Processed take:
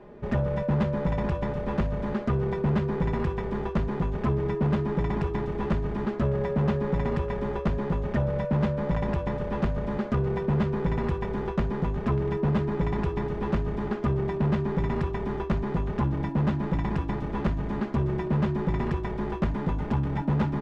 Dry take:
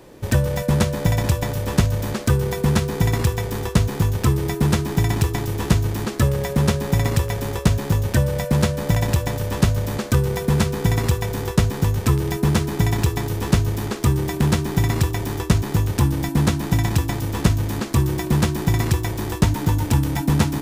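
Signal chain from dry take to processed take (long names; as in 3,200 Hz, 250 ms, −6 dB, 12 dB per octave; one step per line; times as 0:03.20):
low-pass filter 1,600 Hz 12 dB per octave
comb filter 4.9 ms, depth 76%
soft clipping −15.5 dBFS, distortion −9 dB
level −3.5 dB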